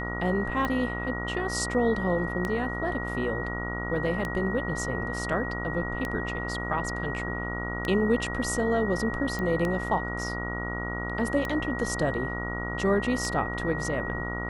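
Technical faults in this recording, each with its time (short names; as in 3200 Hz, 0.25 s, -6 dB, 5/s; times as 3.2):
buzz 60 Hz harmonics 24 -34 dBFS
tick 33 1/3 rpm -16 dBFS
tone 1900 Hz -34 dBFS
9.39 pop -19 dBFS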